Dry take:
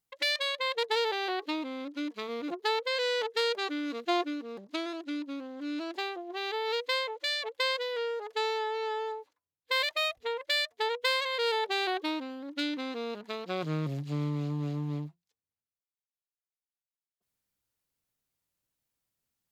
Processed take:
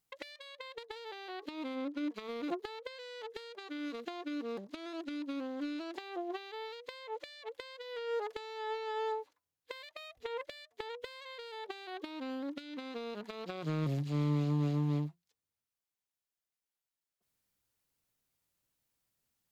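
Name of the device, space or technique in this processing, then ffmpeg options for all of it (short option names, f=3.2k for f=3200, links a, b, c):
de-esser from a sidechain: -filter_complex "[0:a]asplit=3[a][b][c];[a]afade=t=out:st=1.74:d=0.02[d];[b]highshelf=f=2.2k:g=-9,afade=t=in:st=1.74:d=0.02,afade=t=out:st=2.14:d=0.02[e];[c]afade=t=in:st=2.14:d=0.02[f];[d][e][f]amix=inputs=3:normalize=0,asplit=2[g][h];[h]highpass=5.6k,apad=whole_len=860752[i];[g][i]sidechaincompress=threshold=-58dB:ratio=20:attack=4:release=79,volume=2dB"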